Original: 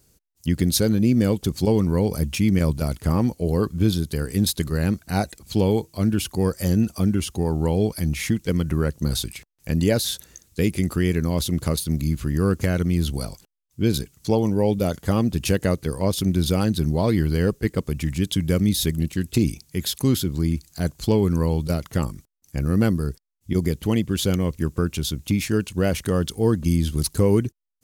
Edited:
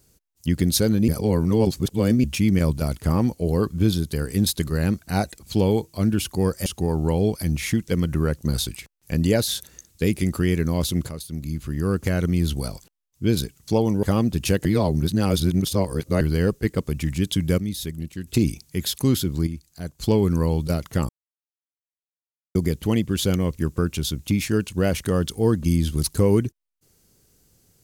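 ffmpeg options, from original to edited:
ffmpeg -i in.wav -filter_complex "[0:a]asplit=14[link_01][link_02][link_03][link_04][link_05][link_06][link_07][link_08][link_09][link_10][link_11][link_12][link_13][link_14];[link_01]atrim=end=1.082[link_15];[link_02]atrim=start=1.078:end=2.242,asetpts=PTS-STARTPTS,areverse[link_16];[link_03]atrim=start=2.238:end=6.662[link_17];[link_04]atrim=start=7.228:end=11.66,asetpts=PTS-STARTPTS,afade=type=out:start_time=4.428:duration=0.004:curve=hsin:silence=0.237137[link_18];[link_05]atrim=start=11.66:end=14.602,asetpts=PTS-STARTPTS,afade=type=in:duration=1.17:silence=0.237137[link_19];[link_06]atrim=start=15.028:end=15.652[link_20];[link_07]atrim=start=15.648:end=17.212,asetpts=PTS-STARTPTS,areverse[link_21];[link_08]atrim=start=17.208:end=18.582[link_22];[link_09]atrim=start=18.578:end=19.272,asetpts=PTS-STARTPTS,volume=-8dB[link_23];[link_10]atrim=start=19.268:end=20.472[link_24];[link_11]atrim=start=20.468:end=21.002,asetpts=PTS-STARTPTS,volume=-8.5dB[link_25];[link_12]atrim=start=20.998:end=22.09,asetpts=PTS-STARTPTS,afade=type=out:start_time=1.088:duration=0.004:curve=hsin[link_26];[link_13]atrim=start=22.09:end=23.55,asetpts=PTS-STARTPTS,volume=0[link_27];[link_14]atrim=start=23.55,asetpts=PTS-STARTPTS,afade=type=in:duration=0.004:curve=hsin[link_28];[link_15][link_16]acrossfade=duration=0.004:curve1=hsin:curve2=hsin[link_29];[link_29][link_17]acrossfade=duration=0.004:curve1=hsin:curve2=hsin[link_30];[link_18][link_19]concat=n=2:v=0:a=1[link_31];[link_30][link_31]acrossfade=duration=0.004:curve1=hsin:curve2=hsin[link_32];[link_32][link_20]acrossfade=duration=0.004:curve1=hsin:curve2=hsin[link_33];[link_33][link_21]acrossfade=duration=0.004:curve1=hsin:curve2=hsin[link_34];[link_34][link_22]acrossfade=duration=0.004:curve1=hsin:curve2=hsin[link_35];[link_35][link_23]acrossfade=duration=0.004:curve1=hsin:curve2=hsin[link_36];[link_36][link_24]acrossfade=duration=0.004:curve1=hsin:curve2=hsin[link_37];[link_37][link_25]acrossfade=duration=0.004:curve1=hsin:curve2=hsin[link_38];[link_26][link_27][link_28]concat=n=3:v=0:a=1[link_39];[link_38][link_39]acrossfade=duration=0.004:curve1=hsin:curve2=hsin" out.wav

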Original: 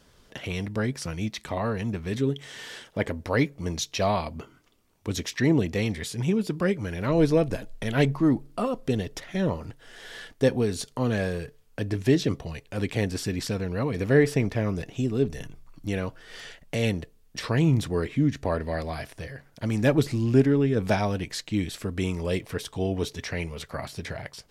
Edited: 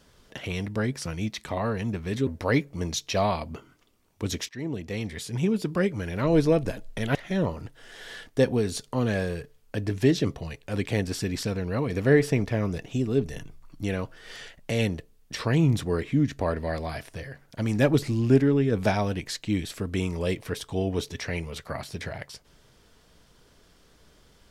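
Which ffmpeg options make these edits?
ffmpeg -i in.wav -filter_complex "[0:a]asplit=4[link_01][link_02][link_03][link_04];[link_01]atrim=end=2.272[link_05];[link_02]atrim=start=3.118:end=5.34,asetpts=PTS-STARTPTS,afade=type=out:start_time=2.218:duration=0.004:curve=hsin:silence=0.133352[link_06];[link_03]atrim=start=5.34:end=8.002,asetpts=PTS-STARTPTS,afade=type=in:duration=1.01:silence=0.133352[link_07];[link_04]atrim=start=9.188[link_08];[link_06][link_07]concat=n=2:v=0:a=1[link_09];[link_05][link_09]acrossfade=duration=0.004:curve1=hsin:curve2=hsin[link_10];[link_10][link_08]acrossfade=duration=0.004:curve1=hsin:curve2=hsin" out.wav

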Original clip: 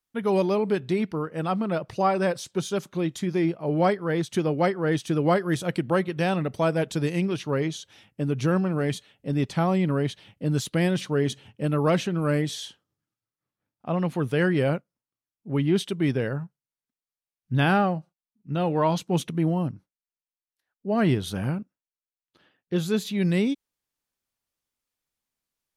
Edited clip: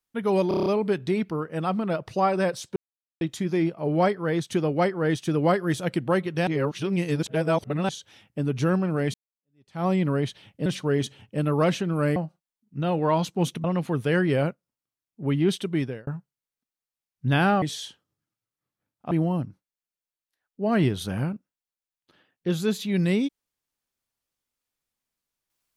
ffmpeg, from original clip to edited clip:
ffmpeg -i in.wav -filter_complex "[0:a]asplit=18[link_01][link_02][link_03][link_04][link_05][link_06][link_07][link_08][link_09][link_10][link_11][link_12][link_13][link_14][link_15][link_16][link_17][link_18];[link_01]atrim=end=0.512[link_19];[link_02]atrim=start=0.478:end=0.512[link_20];[link_03]atrim=start=0.478:end=0.512[link_21];[link_04]atrim=start=0.478:end=0.512[link_22];[link_05]atrim=start=0.478:end=0.512[link_23];[link_06]atrim=start=0.478:end=0.512[link_24];[link_07]atrim=start=0.478:end=2.58,asetpts=PTS-STARTPTS,afade=type=out:start_time=2.098:duration=0.004:curve=hsin[link_25];[link_08]atrim=start=2.58:end=3.03,asetpts=PTS-STARTPTS,volume=0[link_26];[link_09]atrim=start=3.03:end=6.292,asetpts=PTS-STARTPTS,afade=type=in:duration=0.004:curve=hsin[link_27];[link_10]atrim=start=6.288:end=7.712,asetpts=PTS-STARTPTS,areverse[link_28];[link_11]atrim=start=7.708:end=8.96,asetpts=PTS-STARTPTS,afade=type=out:start_time=1.248:duration=0.004:curve=hsin[link_29];[link_12]atrim=start=8.96:end=10.482,asetpts=PTS-STARTPTS,afade=type=in:duration=0.71:curve=exp[link_30];[link_13]atrim=start=10.918:end=12.422[link_31];[link_14]atrim=start=17.888:end=19.372[link_32];[link_15]atrim=start=13.908:end=16.34,asetpts=PTS-STARTPTS,afade=type=out:start_time=2.072:duration=0.36[link_33];[link_16]atrim=start=16.34:end=17.892,asetpts=PTS-STARTPTS,afade=type=in:duration=0.004:curve=hsin[link_34];[link_17]atrim=start=12.418:end=13.912[link_35];[link_18]atrim=start=19.368[link_36];[link_19][link_20]acrossfade=duration=0.004:curve1=hsin:curve2=hsin[link_37];[link_37][link_21]acrossfade=duration=0.004:curve1=hsin:curve2=hsin[link_38];[link_38][link_22]acrossfade=duration=0.004:curve1=hsin:curve2=hsin[link_39];[link_39][link_23]acrossfade=duration=0.004:curve1=hsin:curve2=hsin[link_40];[link_40][link_24]acrossfade=duration=0.004:curve1=hsin:curve2=hsin[link_41];[link_25][link_26][link_27]concat=n=3:v=0:a=1[link_42];[link_41][link_42]acrossfade=duration=0.004:curve1=hsin:curve2=hsin[link_43];[link_43][link_28]acrossfade=duration=0.004:curve1=hsin:curve2=hsin[link_44];[link_29][link_30]concat=n=2:v=0:a=1[link_45];[link_44][link_45]acrossfade=duration=0.004:curve1=hsin:curve2=hsin[link_46];[link_46][link_31]acrossfade=duration=0.004:curve1=hsin:curve2=hsin[link_47];[link_47][link_32]acrossfade=duration=0.004:curve1=hsin:curve2=hsin[link_48];[link_33][link_34]concat=n=2:v=0:a=1[link_49];[link_48][link_49]acrossfade=duration=0.004:curve1=hsin:curve2=hsin[link_50];[link_50][link_35]acrossfade=duration=0.004:curve1=hsin:curve2=hsin[link_51];[link_51][link_36]acrossfade=duration=0.004:curve1=hsin:curve2=hsin" out.wav

